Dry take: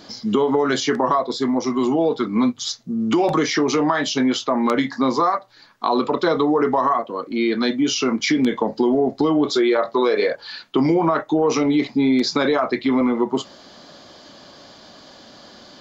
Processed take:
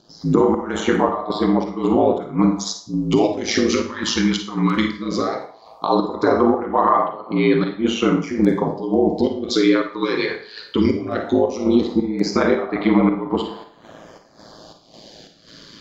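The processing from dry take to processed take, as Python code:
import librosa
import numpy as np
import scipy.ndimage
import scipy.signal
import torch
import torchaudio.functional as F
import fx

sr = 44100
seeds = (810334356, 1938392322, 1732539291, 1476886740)

p1 = x + fx.echo_banded(x, sr, ms=87, feedback_pct=65, hz=800.0, wet_db=-10, dry=0)
p2 = fx.volume_shaper(p1, sr, bpm=110, per_beat=1, depth_db=-14, release_ms=206.0, shape='slow start')
p3 = p2 * np.sin(2.0 * np.pi * 55.0 * np.arange(len(p2)) / sr)
p4 = fx.filter_lfo_notch(p3, sr, shape='sine', hz=0.17, low_hz=620.0, high_hz=6400.0, q=0.73)
p5 = fx.rev_schroeder(p4, sr, rt60_s=0.41, comb_ms=38, drr_db=6.0)
y = p5 * librosa.db_to_amplitude(5.0)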